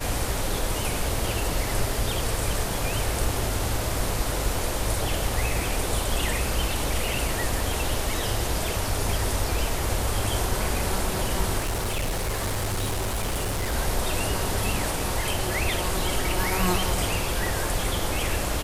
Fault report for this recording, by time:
0:11.58–0:13.74: clipping −23 dBFS

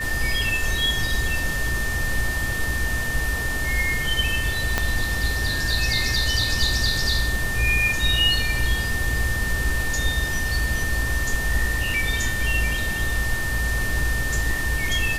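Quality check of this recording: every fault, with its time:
whistle 1,800 Hz −26 dBFS
0:04.78: click −5 dBFS

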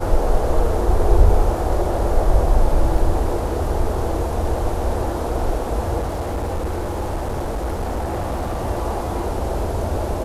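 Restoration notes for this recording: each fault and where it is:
0:02.98: drop-out 2.3 ms
0:05.99–0:08.60: clipping −19.5 dBFS

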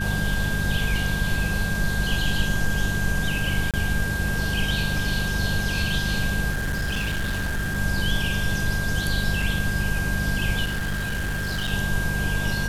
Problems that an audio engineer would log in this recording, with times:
mains hum 50 Hz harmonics 4 −28 dBFS
whistle 1,600 Hz −28 dBFS
0:03.71–0:03.74: drop-out 27 ms
0:06.50–0:07.78: clipping −22 dBFS
0:09.42: drop-out 3 ms
0:10.64–0:11.73: clipping −23 dBFS

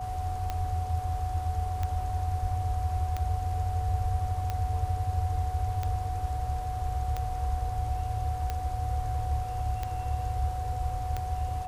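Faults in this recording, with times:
scratch tick 45 rpm −18 dBFS
whistle 740 Hz −34 dBFS

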